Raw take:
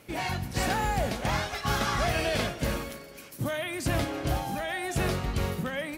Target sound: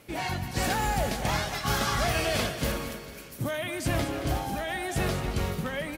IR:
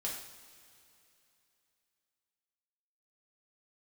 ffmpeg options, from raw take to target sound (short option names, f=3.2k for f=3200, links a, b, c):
-filter_complex "[0:a]asettb=1/sr,asplit=3[a][b][c];[a]atrim=end=0.644[d];[b]atrim=start=0.64:end=2.72,asetpts=PTS-STARTPTS,afade=t=in:d=0.004:c=qsin,afade=t=out:st=2.076:d=0.004:c=qsin,highshelf=f=5k:g=5[e];[c]atrim=start=2.716[f];[d][e]acrossfade=d=0.004:c1=hsin:c2=qsin[g];[g][f]acrossfade=d=0.004:c1=qsin:c2=hsin,aecho=1:1:224|448|672|896|1120:0.266|0.122|0.0563|0.0259|0.0119" -ar 48000 -c:a libvorbis -b:a 64k